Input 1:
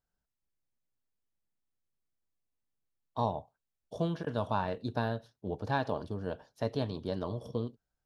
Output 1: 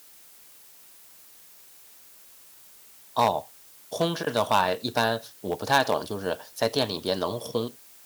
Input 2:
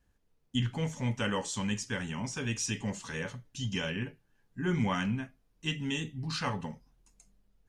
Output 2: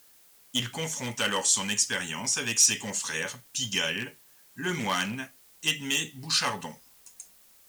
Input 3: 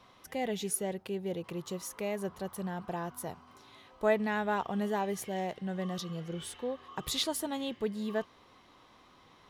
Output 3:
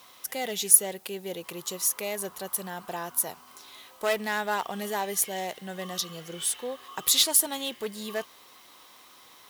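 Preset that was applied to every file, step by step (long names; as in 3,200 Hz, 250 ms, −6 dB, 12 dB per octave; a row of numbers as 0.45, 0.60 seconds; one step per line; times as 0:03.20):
background noise pink −71 dBFS
asymmetric clip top −26 dBFS, bottom −20 dBFS
RIAA equalisation recording
loudness normalisation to −27 LKFS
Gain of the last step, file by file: +11.5, +5.0, +4.0 decibels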